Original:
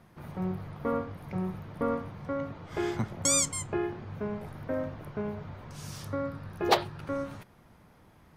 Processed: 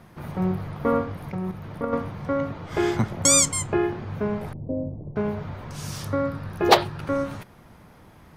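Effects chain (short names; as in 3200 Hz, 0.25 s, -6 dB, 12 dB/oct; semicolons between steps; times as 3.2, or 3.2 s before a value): 1.29–1.93 level quantiser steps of 9 dB; 4.53–5.16 Gaussian blur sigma 16 samples; gain +8 dB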